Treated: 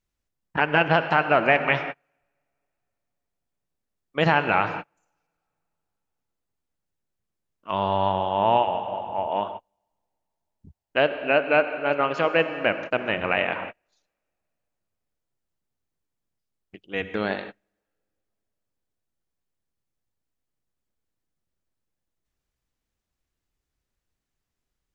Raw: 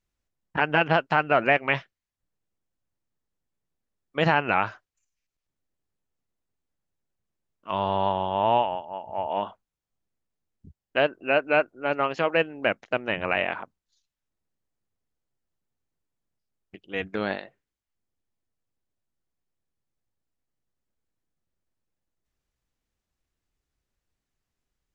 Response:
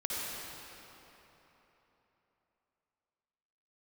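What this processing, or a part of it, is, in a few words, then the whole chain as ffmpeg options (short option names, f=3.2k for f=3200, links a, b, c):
keyed gated reverb: -filter_complex "[0:a]asplit=3[a][b][c];[1:a]atrim=start_sample=2205[d];[b][d]afir=irnorm=-1:irlink=0[e];[c]apad=whole_len=1099982[f];[e][f]sidechaingate=range=-39dB:threshold=-42dB:ratio=16:detection=peak,volume=-12dB[g];[a][g]amix=inputs=2:normalize=0"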